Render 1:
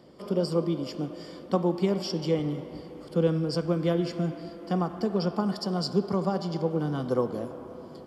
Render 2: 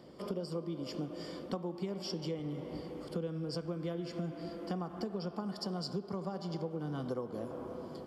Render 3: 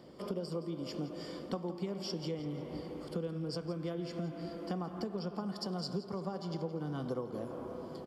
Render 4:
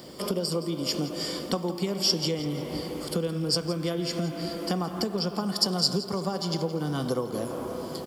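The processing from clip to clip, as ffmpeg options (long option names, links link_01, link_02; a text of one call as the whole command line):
ffmpeg -i in.wav -af "acompressor=threshold=-34dB:ratio=6,volume=-1dB" out.wav
ffmpeg -i in.wav -af "aecho=1:1:169|338|507|676:0.178|0.0818|0.0376|0.0173" out.wav
ffmpeg -i in.wav -af "crystalizer=i=4:c=0,volume=8.5dB" out.wav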